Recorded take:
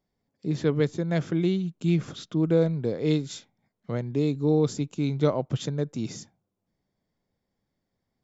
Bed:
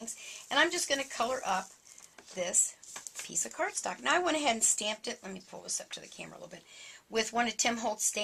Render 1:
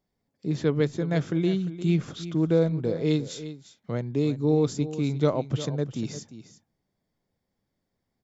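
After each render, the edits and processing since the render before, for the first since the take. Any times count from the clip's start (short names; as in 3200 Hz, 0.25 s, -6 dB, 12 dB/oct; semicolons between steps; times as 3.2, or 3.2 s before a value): echo 0.35 s -13.5 dB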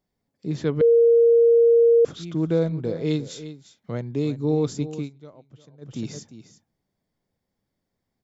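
0.81–2.05 bleep 466 Hz -12 dBFS; 4.98–5.93 dip -22 dB, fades 0.12 s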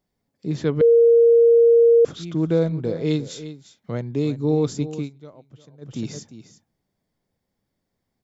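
gain +2 dB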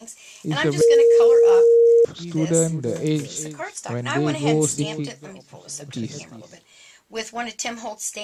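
add bed +1.5 dB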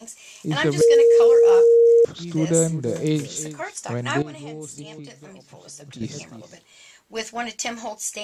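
4.22–6.01 compressor 2.5:1, threshold -40 dBFS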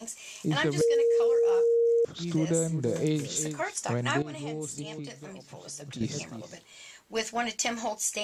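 compressor 4:1, threshold -24 dBFS, peak gain reduction 10.5 dB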